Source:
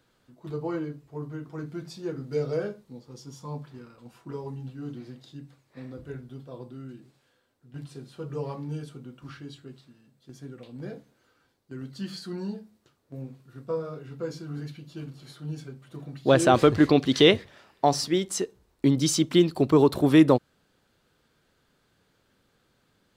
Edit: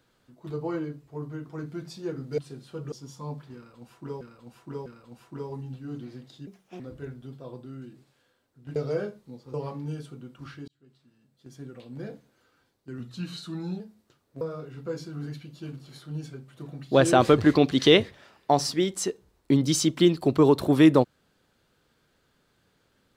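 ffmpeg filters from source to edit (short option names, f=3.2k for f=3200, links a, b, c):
-filter_complex "[0:a]asplit=13[a][b][c][d][e][f][g][h][i][j][k][l][m];[a]atrim=end=2.382[n];[b]atrim=start=7.828:end=8.372[o];[c]atrim=start=3.158:end=4.452[p];[d]atrim=start=3.798:end=4.452[q];[e]atrim=start=3.798:end=5.414[r];[f]atrim=start=5.41:end=5.87,asetpts=PTS-STARTPTS,asetrate=61740,aresample=44100,atrim=end_sample=14490,asetpts=PTS-STARTPTS[s];[g]atrim=start=5.866:end=7.832[t];[h]atrim=start=2.378:end=3.162[u];[i]atrim=start=8.368:end=9.51,asetpts=PTS-STARTPTS,afade=t=out:st=1.138:d=0.004:c=hsin[v];[j]atrim=start=9.51:end=11.834,asetpts=PTS-STARTPTS,afade=t=in:d=0.97[w];[k]atrim=start=11.83:end=12.56,asetpts=PTS-STARTPTS,asetrate=40131,aresample=44100[x];[l]atrim=start=12.556:end=13.172[y];[m]atrim=start=13.748[z];[n][o]acrossfade=d=0.004:c1=hsin:c2=hsin[aa];[aa][p]acrossfade=d=0.004:c1=hsin:c2=hsin[ab];[ab][q]acrossfade=d=0.004:c1=hsin:c2=hsin[ac];[ac][r]acrossfade=d=0.004:c1=hsin:c2=hsin[ad];[ad][s]acrossfade=d=0.004:c1=hsin:c2=hsin[ae];[ae][t]acrossfade=d=0.004:c1=hsin:c2=hsin[af];[af][u]acrossfade=d=0.004:c1=hsin:c2=hsin[ag];[v][w]concat=n=2:v=0:a=1[ah];[ag][ah]acrossfade=d=0.004:c1=hsin:c2=hsin[ai];[ai][x]acrossfade=d=0.004:c1=hsin:c2=hsin[aj];[aj][y]acrossfade=d=0.004:c1=hsin:c2=hsin[ak];[ak][z]acrossfade=d=0.004:c1=hsin:c2=hsin"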